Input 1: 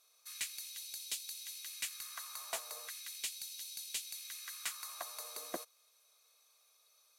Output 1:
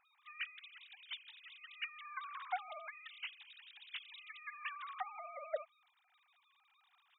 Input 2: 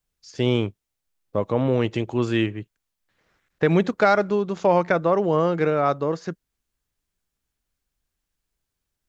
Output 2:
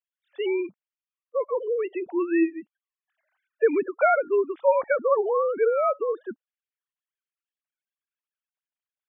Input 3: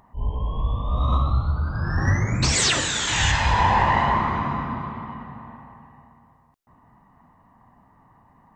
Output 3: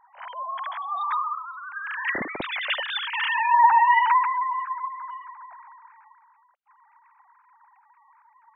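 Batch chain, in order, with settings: formants replaced by sine waves; spectral gate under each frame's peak -30 dB strong; trim -2.5 dB

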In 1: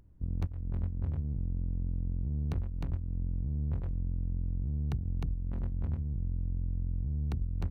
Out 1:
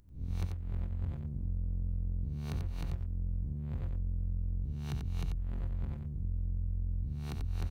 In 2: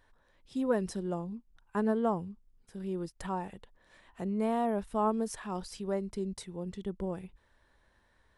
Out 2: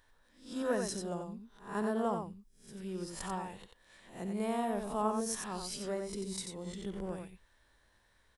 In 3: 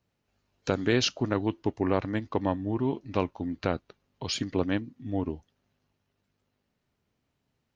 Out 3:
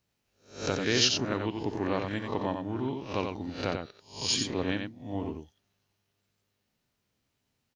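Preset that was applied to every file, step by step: reverse spectral sustain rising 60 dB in 0.41 s; treble shelf 2.6 kHz +9.5 dB; on a send: delay 90 ms -5.5 dB; on the sum: trim -5.5 dB

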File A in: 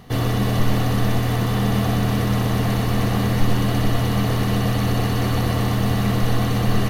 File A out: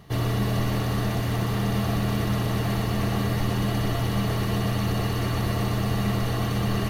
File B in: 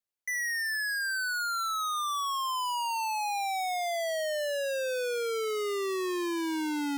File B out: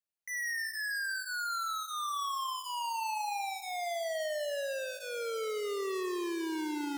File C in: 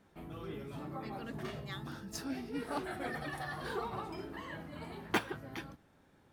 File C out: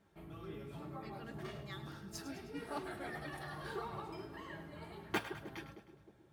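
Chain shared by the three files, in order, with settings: comb of notches 250 Hz; on a send: two-band feedback delay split 610 Hz, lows 311 ms, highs 104 ms, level -12 dB; on the sum: trim -3.5 dB

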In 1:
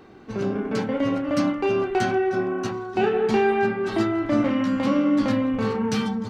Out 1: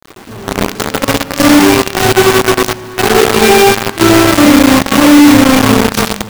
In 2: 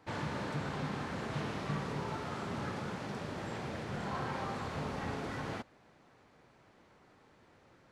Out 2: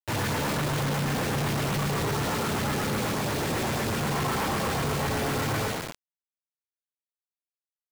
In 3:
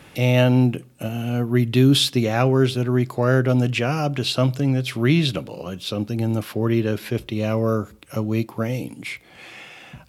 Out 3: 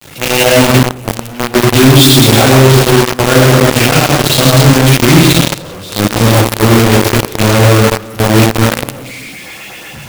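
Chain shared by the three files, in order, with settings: hum notches 50/100/150/200/250/300/350/400 Hz; gated-style reverb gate 480 ms falling, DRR -7.5 dB; LFO notch saw up 8.1 Hz 550–6300 Hz; companded quantiser 2-bit; trim -1 dB

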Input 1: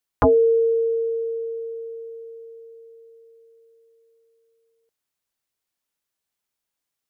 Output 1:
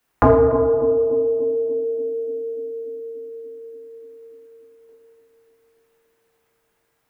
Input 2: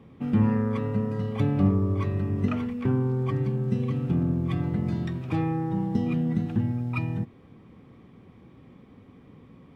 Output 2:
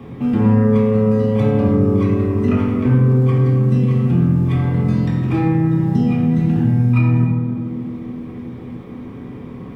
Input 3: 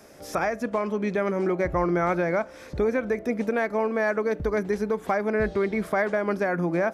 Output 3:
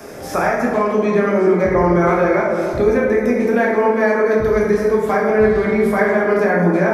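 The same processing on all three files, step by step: treble shelf 8.6 kHz +4 dB; on a send: band-passed feedback delay 291 ms, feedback 68%, band-pass 350 Hz, level -8 dB; on the sum: plate-style reverb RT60 1.3 s, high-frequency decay 0.5×, DRR -4.5 dB; three bands compressed up and down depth 40%; trim +2.5 dB

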